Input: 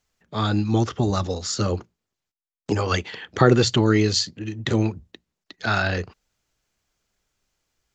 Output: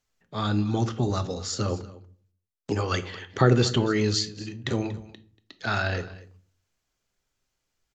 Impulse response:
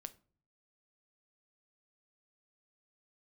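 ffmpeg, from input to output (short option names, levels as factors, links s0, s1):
-filter_complex "[0:a]aecho=1:1:236:0.119[s0];[1:a]atrim=start_sample=2205,asetrate=37926,aresample=44100[s1];[s0][s1]afir=irnorm=-1:irlink=0"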